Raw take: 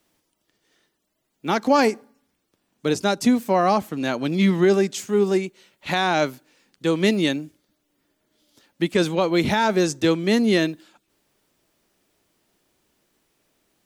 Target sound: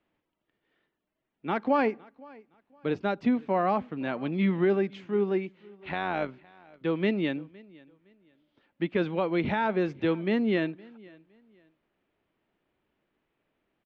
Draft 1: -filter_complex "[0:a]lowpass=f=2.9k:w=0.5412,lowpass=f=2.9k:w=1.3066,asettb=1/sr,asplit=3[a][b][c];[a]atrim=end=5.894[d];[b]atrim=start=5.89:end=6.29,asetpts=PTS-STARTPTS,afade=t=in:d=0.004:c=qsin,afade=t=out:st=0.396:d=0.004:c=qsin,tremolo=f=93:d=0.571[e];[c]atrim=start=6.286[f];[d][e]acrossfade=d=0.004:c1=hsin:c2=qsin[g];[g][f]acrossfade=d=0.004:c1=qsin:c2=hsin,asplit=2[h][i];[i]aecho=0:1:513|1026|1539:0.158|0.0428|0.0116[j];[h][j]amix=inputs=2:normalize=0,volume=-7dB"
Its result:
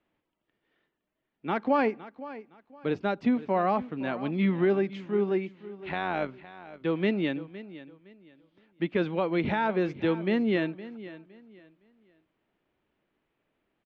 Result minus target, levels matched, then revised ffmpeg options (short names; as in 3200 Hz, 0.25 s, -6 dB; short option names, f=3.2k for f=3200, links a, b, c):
echo-to-direct +8 dB
-filter_complex "[0:a]lowpass=f=2.9k:w=0.5412,lowpass=f=2.9k:w=1.3066,asettb=1/sr,asplit=3[a][b][c];[a]atrim=end=5.894[d];[b]atrim=start=5.89:end=6.29,asetpts=PTS-STARTPTS,afade=t=in:d=0.004:c=qsin,afade=t=out:st=0.396:d=0.004:c=qsin,tremolo=f=93:d=0.571[e];[c]atrim=start=6.286[f];[d][e]acrossfade=d=0.004:c1=hsin:c2=qsin[g];[g][f]acrossfade=d=0.004:c1=qsin:c2=hsin,asplit=2[h][i];[i]aecho=0:1:513|1026:0.0631|0.017[j];[h][j]amix=inputs=2:normalize=0,volume=-7dB"